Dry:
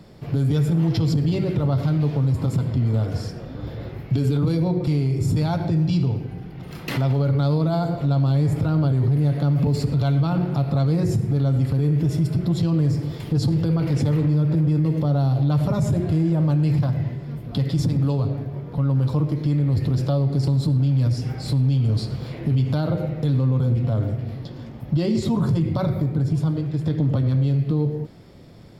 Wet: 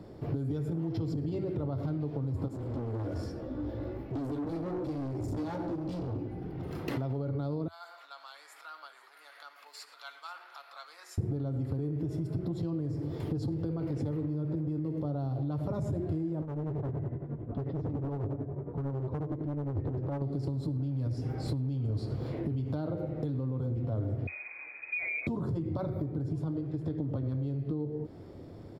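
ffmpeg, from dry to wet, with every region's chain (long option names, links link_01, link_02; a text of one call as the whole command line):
ffmpeg -i in.wav -filter_complex "[0:a]asettb=1/sr,asplit=3[link_01][link_02][link_03];[link_01]atrim=end=2.484[link_04];[link_02]atrim=start=2.48:end=6.42,asetpts=PTS-STARTPTS,afade=type=in:duration=0.004:curve=qsin,afade=type=out:start_time=3.936:duration=0.004:curve=qsin,aecho=1:1:3.5:0.48,atrim=end_sample=173754,flanger=delay=15:depth=2.1:speed=1.2,asoftclip=type=hard:threshold=-30dB[link_05];[link_03]atrim=start=6.416[link_06];[link_04][link_05]acrossfade=duration=0.004:curve1=hsin:curve2=qsin[link_07];[link_07][link_06]acrossfade=duration=0.004:curve1=qsin:curve2=hsin,asettb=1/sr,asplit=3[link_08][link_09][link_10];[link_08]atrim=end=7.684[link_11];[link_09]atrim=start=7.68:end=11.18,asetpts=PTS-STARTPTS,afade=type=in:duration=0.004:curve=qsin,afade=type=out:start_time=3.496:duration=0.004:curve=qsin,highpass=frequency=1300:width=0.5412,highpass=frequency=1300:width=1.3066,aecho=1:1:487:0.158,atrim=end_sample=154350[link_12];[link_10]atrim=start=11.176[link_13];[link_11][link_12]acrossfade=duration=0.004:curve1=hsin:curve2=qsin[link_14];[link_14][link_13]acrossfade=duration=0.004:curve1=qsin:curve2=hsin,asettb=1/sr,asplit=3[link_15][link_16][link_17];[link_15]atrim=end=16.424[link_18];[link_16]atrim=start=16.42:end=20.22,asetpts=PTS-STARTPTS,afade=type=in:duration=0.004:curve=qsin,afade=type=out:start_time=3.796:duration=0.004:curve=qsin,lowpass=1600,tremolo=f=11:d=0.69,asoftclip=type=hard:threshold=-25.5dB[link_19];[link_17]atrim=start=20.216[link_20];[link_18][link_19]acrossfade=duration=0.004:curve1=hsin:curve2=qsin[link_21];[link_21][link_20]acrossfade=duration=0.004:curve1=qsin:curve2=hsin,asettb=1/sr,asplit=3[link_22][link_23][link_24];[link_22]atrim=end=24.274[link_25];[link_23]atrim=start=24.27:end=25.27,asetpts=PTS-STARTPTS,afade=type=in:duration=0.004:curve=qsin,afade=type=out:start_time=0.996:duration=0.004:curve=qsin,lowpass=frequency=2200:width_type=q:width=0.5098,lowpass=frequency=2200:width_type=q:width=0.6013,lowpass=frequency=2200:width_type=q:width=0.9,lowpass=frequency=2200:width_type=q:width=2.563,afreqshift=-2600,asplit=2[link_26][link_27];[link_27]adelay=35,volume=-13.5dB[link_28];[link_26][link_28]amix=inputs=2:normalize=0,atrim=end_sample=44100[link_29];[link_24]atrim=start=25.266[link_30];[link_25][link_29]acrossfade=duration=0.004:curve1=hsin:curve2=qsin[link_31];[link_31][link_30]acrossfade=duration=0.004:curve1=qsin:curve2=hsin,firequalizer=gain_entry='entry(200,0);entry(300,9);entry(550,5);entry(2400,-5)':delay=0.05:min_phase=1,acompressor=threshold=-26dB:ratio=6,equalizer=frequency=88:width=2.6:gain=8,volume=-5.5dB" out.wav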